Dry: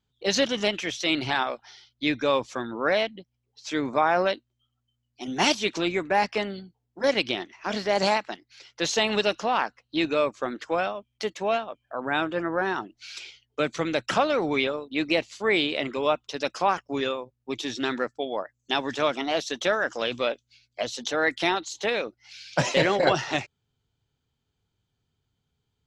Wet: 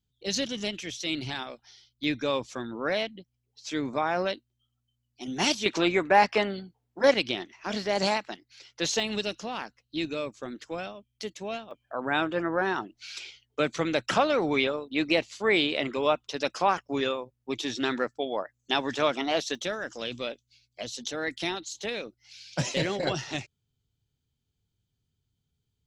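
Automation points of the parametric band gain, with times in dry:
parametric band 1,000 Hz 3 octaves
−13 dB
from 0:02.04 −6.5 dB
from 0:05.66 +3.5 dB
from 0:07.14 −4.5 dB
from 0:09.00 −12.5 dB
from 0:11.71 −1 dB
from 0:19.55 −11 dB

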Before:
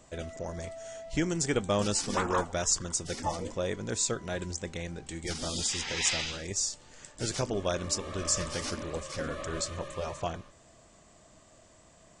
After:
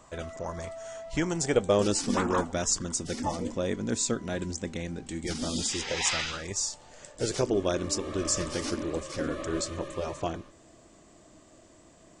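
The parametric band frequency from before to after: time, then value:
parametric band +10 dB 0.78 octaves
0:01.18 1,100 Hz
0:02.07 250 Hz
0:05.69 250 Hz
0:06.20 1,500 Hz
0:07.60 320 Hz

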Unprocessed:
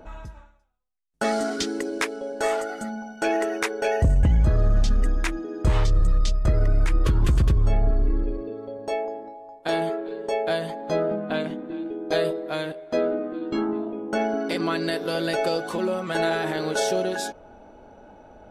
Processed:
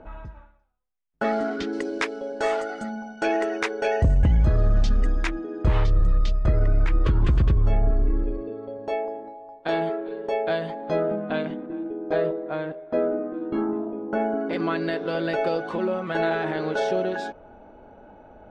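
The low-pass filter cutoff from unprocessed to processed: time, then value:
2,400 Hz
from 0:01.73 5,100 Hz
from 0:05.29 3,200 Hz
from 0:11.66 1,600 Hz
from 0:14.53 2,700 Hz

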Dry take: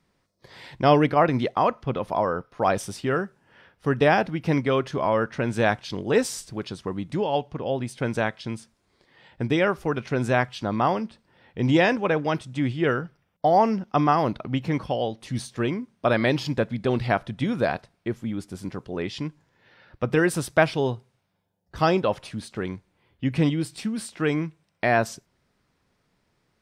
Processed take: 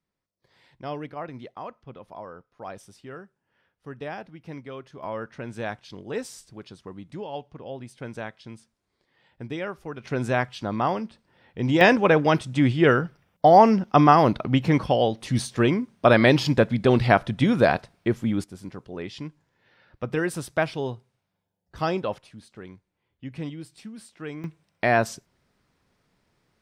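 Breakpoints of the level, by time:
−16 dB
from 0:05.03 −10 dB
from 0:10.04 −2 dB
from 0:11.81 +5 dB
from 0:18.44 −5 dB
from 0:22.18 −12 dB
from 0:24.44 +0.5 dB

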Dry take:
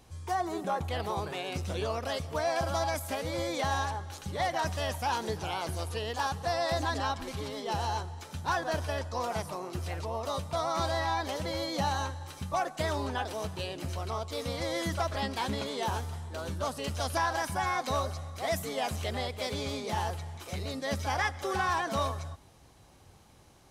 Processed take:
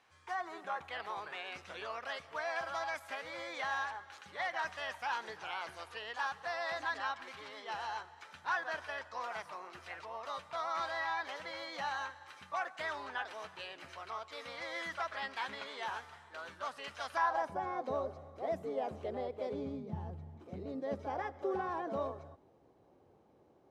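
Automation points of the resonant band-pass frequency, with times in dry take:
resonant band-pass, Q 1.4
0:17.09 1,700 Hz
0:17.61 430 Hz
0:19.50 430 Hz
0:19.88 140 Hz
0:20.91 420 Hz

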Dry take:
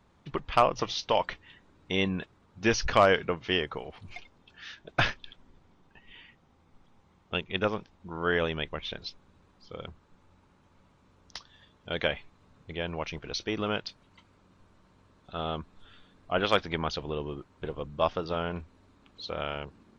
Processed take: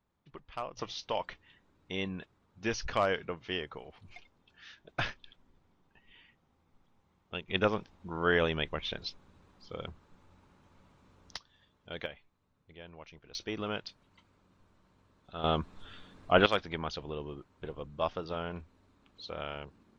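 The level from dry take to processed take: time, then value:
−16.5 dB
from 0:00.77 −8 dB
from 0:07.48 0 dB
from 0:11.37 −9 dB
from 0:12.06 −16 dB
from 0:13.35 −5.5 dB
from 0:15.44 +4.5 dB
from 0:16.46 −5.5 dB

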